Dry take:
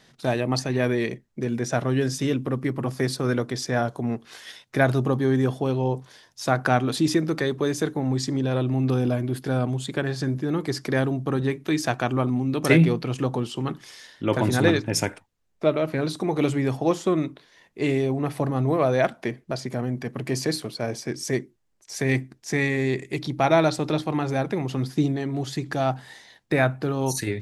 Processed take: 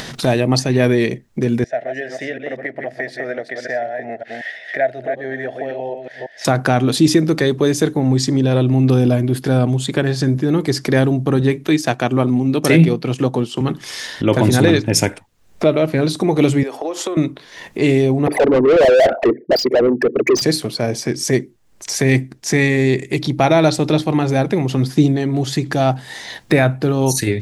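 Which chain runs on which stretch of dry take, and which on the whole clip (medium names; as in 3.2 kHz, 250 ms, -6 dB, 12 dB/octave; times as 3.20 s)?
1.64–6.45 s: chunks repeated in reverse 185 ms, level -7 dB + two resonant band-passes 1.1 kHz, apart 1.5 oct
11.67–13.61 s: transient shaper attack -1 dB, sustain -6 dB + high-pass 120 Hz
16.63–17.17 s: high-pass 350 Hz 24 dB/octave + compression, threshold -30 dBFS + three bands expanded up and down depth 40%
18.27–20.42 s: resonances exaggerated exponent 3 + high-pass 490 Hz + overdrive pedal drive 32 dB, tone 1.6 kHz, clips at -12.5 dBFS
whole clip: dynamic bell 1.2 kHz, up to -5 dB, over -40 dBFS, Q 1.1; upward compressor, threshold -27 dBFS; loudness maximiser +10.5 dB; trim -1 dB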